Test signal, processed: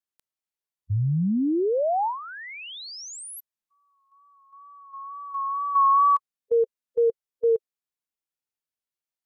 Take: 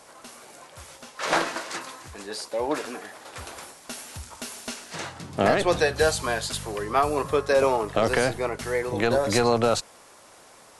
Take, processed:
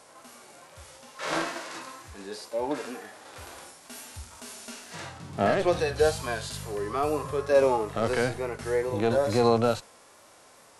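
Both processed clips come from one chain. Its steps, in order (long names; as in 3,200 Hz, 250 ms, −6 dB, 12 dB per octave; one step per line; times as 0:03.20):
tape wow and flutter 39 cents
harmonic and percussive parts rebalanced percussive −16 dB
level +1 dB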